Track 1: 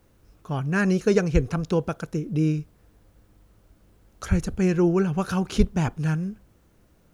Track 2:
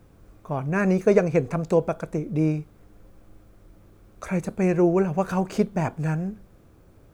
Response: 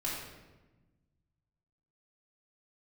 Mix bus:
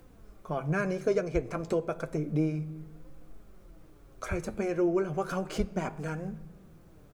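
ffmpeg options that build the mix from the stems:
-filter_complex "[0:a]acompressor=mode=upward:threshold=-43dB:ratio=2.5,volume=-12.5dB[a];[1:a]acompressor=threshold=-24dB:ratio=6,flanger=delay=3.7:depth=5.9:regen=40:speed=0.32:shape=triangular,volume=-1,adelay=0.8,volume=0.5dB,asplit=2[b][c];[c]volume=-17.5dB[d];[2:a]atrim=start_sample=2205[e];[d][e]afir=irnorm=-1:irlink=0[f];[a][b][f]amix=inputs=3:normalize=0"

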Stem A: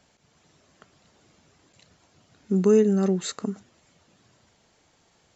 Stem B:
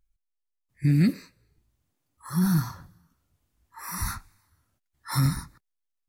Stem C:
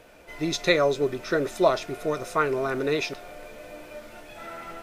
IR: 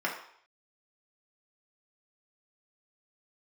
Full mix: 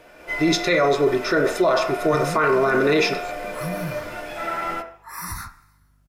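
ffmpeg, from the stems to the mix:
-filter_complex "[0:a]volume=-16dB[a];[1:a]aeval=exprs='val(0)+0.001*(sin(2*PI*50*n/s)+sin(2*PI*2*50*n/s)/2+sin(2*PI*3*50*n/s)/3+sin(2*PI*4*50*n/s)/4+sin(2*PI*5*50*n/s)/5)':c=same,acompressor=threshold=-30dB:ratio=6,adelay=1300,volume=1dB,asplit=2[b][c];[c]volume=-12.5dB[d];[2:a]dynaudnorm=f=160:g=3:m=7.5dB,volume=-2dB,asplit=2[e][f];[f]volume=-5.5dB[g];[3:a]atrim=start_sample=2205[h];[d][g]amix=inputs=2:normalize=0[i];[i][h]afir=irnorm=-1:irlink=0[j];[a][b][e][j]amix=inputs=4:normalize=0,alimiter=limit=-10.5dB:level=0:latency=1:release=18"

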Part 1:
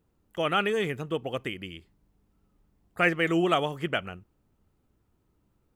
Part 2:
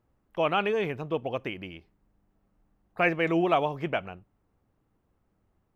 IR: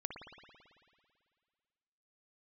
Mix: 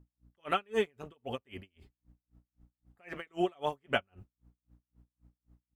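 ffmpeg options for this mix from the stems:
-filter_complex "[0:a]agate=range=-12dB:threshold=-55dB:ratio=16:detection=peak,aeval=exprs='val(0)+0.00158*(sin(2*PI*60*n/s)+sin(2*PI*2*60*n/s)/2+sin(2*PI*3*60*n/s)/3+sin(2*PI*4*60*n/s)/4+sin(2*PI*5*60*n/s)/5)':c=same,volume=-1.5dB[a];[1:a]dynaudnorm=f=280:g=3:m=6.5dB,volume=-1,adelay=6.7,volume=-9.5dB[b];[a][b]amix=inputs=2:normalize=0,aeval=exprs='val(0)*pow(10,-39*(0.5-0.5*cos(2*PI*3.8*n/s))/20)':c=same"

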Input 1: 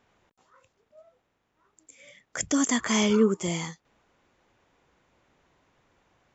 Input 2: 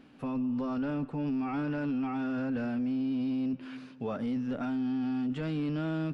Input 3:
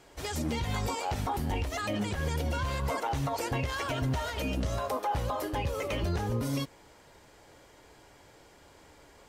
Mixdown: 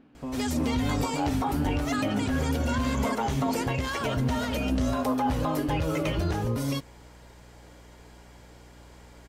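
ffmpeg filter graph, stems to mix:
-filter_complex "[0:a]volume=-10dB,asplit=2[a][b];[b]volume=-9dB[c];[1:a]volume=0dB,asplit=2[d][e];[e]volume=-5dB[f];[2:a]aeval=exprs='val(0)+0.00224*(sin(2*PI*60*n/s)+sin(2*PI*2*60*n/s)/2+sin(2*PI*3*60*n/s)/3+sin(2*PI*4*60*n/s)/4+sin(2*PI*5*60*n/s)/5)':c=same,adelay=150,volume=2.5dB[g];[a][d]amix=inputs=2:normalize=0,highshelf=f=2.1k:g=-10.5,alimiter=level_in=1.5dB:limit=-24dB:level=0:latency=1,volume=-1.5dB,volume=0dB[h];[c][f]amix=inputs=2:normalize=0,aecho=0:1:336:1[i];[g][h][i]amix=inputs=3:normalize=0"

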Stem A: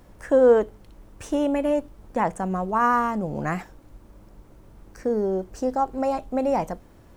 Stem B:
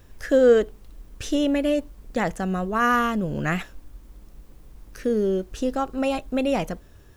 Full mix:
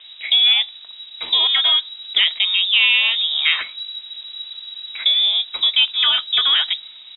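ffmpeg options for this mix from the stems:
-filter_complex "[0:a]acontrast=87,volume=2dB[a];[1:a]adynamicequalizer=threshold=0.0126:dfrequency=2200:dqfactor=1.6:tfrequency=2200:tqfactor=1.6:attack=5:release=100:ratio=0.375:range=2:mode=boostabove:tftype=bell,dynaudnorm=f=170:g=7:m=14dB,flanger=delay=1.6:depth=2.7:regen=-73:speed=1.2:shape=sinusoidal,volume=-1,adelay=0.4,volume=3dB[b];[a][b]amix=inputs=2:normalize=0,acrossover=split=440|1000|2800[c][d][e][f];[c]acompressor=threshold=-22dB:ratio=4[g];[d]acompressor=threshold=-20dB:ratio=4[h];[e]acompressor=threshold=-18dB:ratio=4[i];[f]acompressor=threshold=-34dB:ratio=4[j];[g][h][i][j]amix=inputs=4:normalize=0,lowpass=f=3.3k:t=q:w=0.5098,lowpass=f=3.3k:t=q:w=0.6013,lowpass=f=3.3k:t=q:w=0.9,lowpass=f=3.3k:t=q:w=2.563,afreqshift=-3900"

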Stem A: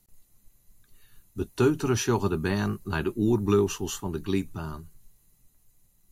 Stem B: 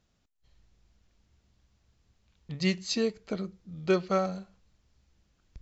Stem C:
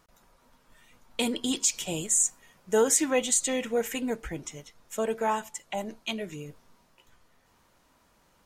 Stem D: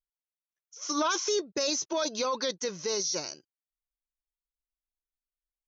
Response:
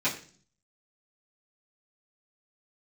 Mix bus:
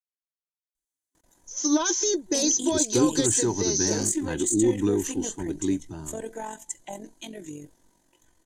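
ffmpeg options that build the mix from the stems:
-filter_complex "[0:a]lowpass=f=8.1k:w=0.5412,lowpass=f=8.1k:w=1.3066,adelay=1350,volume=-4.5dB[a];[2:a]asoftclip=type=tanh:threshold=-18dB,adelay=1150,volume=-1.5dB[b];[3:a]adelay=750,volume=1dB[c];[b]tremolo=f=45:d=0.571,alimiter=level_in=1.5dB:limit=-24dB:level=0:latency=1:release=254,volume=-1.5dB,volume=0dB[d];[a][c][d]amix=inputs=3:normalize=0,superequalizer=6b=2.82:10b=0.355:12b=0.562:15b=2.82:16b=2.51"

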